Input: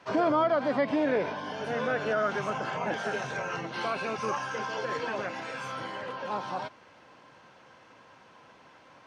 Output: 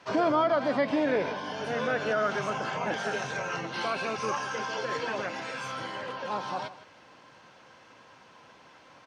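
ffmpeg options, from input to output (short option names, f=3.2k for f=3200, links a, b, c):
-af "equalizer=f=5.4k:w=0.59:g=4,aecho=1:1:157:0.168"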